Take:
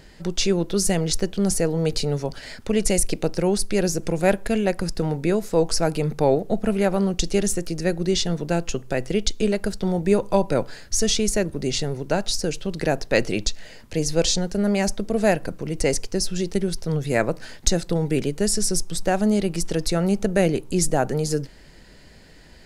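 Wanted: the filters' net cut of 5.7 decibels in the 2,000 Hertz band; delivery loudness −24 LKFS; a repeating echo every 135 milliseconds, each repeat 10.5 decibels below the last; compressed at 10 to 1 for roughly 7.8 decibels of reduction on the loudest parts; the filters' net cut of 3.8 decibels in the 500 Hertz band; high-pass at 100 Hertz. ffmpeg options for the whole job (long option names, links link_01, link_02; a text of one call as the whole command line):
ffmpeg -i in.wav -af "highpass=100,equalizer=frequency=500:width_type=o:gain=-4.5,equalizer=frequency=2000:width_type=o:gain=-7,acompressor=threshold=-23dB:ratio=10,aecho=1:1:135|270|405:0.299|0.0896|0.0269,volume=4.5dB" out.wav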